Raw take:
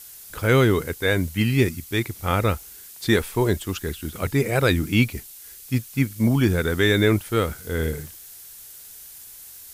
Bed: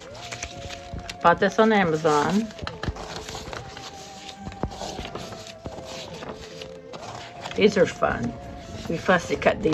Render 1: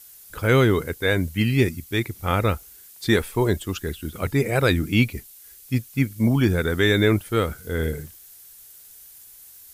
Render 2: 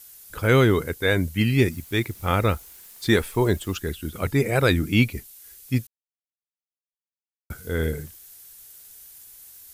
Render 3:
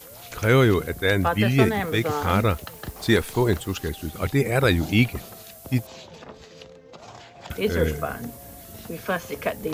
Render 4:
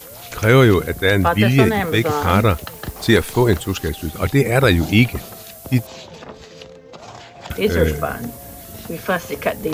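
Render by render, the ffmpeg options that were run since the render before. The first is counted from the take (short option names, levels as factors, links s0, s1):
-af "afftdn=nr=6:nf=-43"
-filter_complex "[0:a]asettb=1/sr,asplit=3[s0][s1][s2];[s0]atrim=end=1.714[s3];[s1]atrim=start=1.71:end=3.78,asetpts=PTS-STARTPTS,afade=t=in:d=0.004:c=qsin,afade=t=out:st=2.066:d=0.004:c=qsin,acrusher=bits=9:dc=4:mix=0:aa=0.000001[s4];[s2]atrim=start=3.776[s5];[s3][s4]acrossfade=d=0.004:c1=hsin:c2=qsin[s6];[s6][s5]acrossfade=d=0.004:c1=qsin:c2=hsin,asplit=3[s7][s8][s9];[s7]atrim=end=5.87,asetpts=PTS-STARTPTS,afade=t=out:st=5.866:d=0.004:c=hsin[s10];[s8]atrim=start=5.87:end=7.5,asetpts=PTS-STARTPTS,volume=0[s11];[s9]atrim=start=7.5,asetpts=PTS-STARTPTS,afade=t=in:d=0.004:c=hsin[s12];[s10][s11][s12]concat=n=3:v=0:a=1"
-filter_complex "[1:a]volume=0.473[s0];[0:a][s0]amix=inputs=2:normalize=0"
-af "volume=2,alimiter=limit=0.794:level=0:latency=1"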